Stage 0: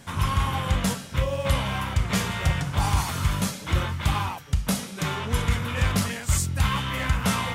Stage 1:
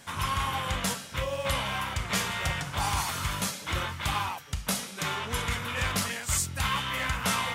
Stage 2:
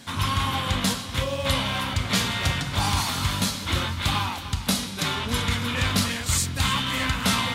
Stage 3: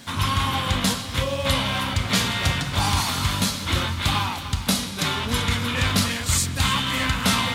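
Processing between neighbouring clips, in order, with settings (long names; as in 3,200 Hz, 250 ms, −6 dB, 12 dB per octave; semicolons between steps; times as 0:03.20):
low-shelf EQ 410 Hz −10.5 dB
graphic EQ with 15 bands 100 Hz +7 dB, 250 Hz +11 dB, 4,000 Hz +8 dB; echo with a time of its own for lows and highs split 300 Hz, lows 719 ms, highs 301 ms, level −12.5 dB; level +2 dB
surface crackle 140 per second −38 dBFS; on a send at −19 dB: convolution reverb RT60 4.1 s, pre-delay 100 ms; on the sum: level +2 dB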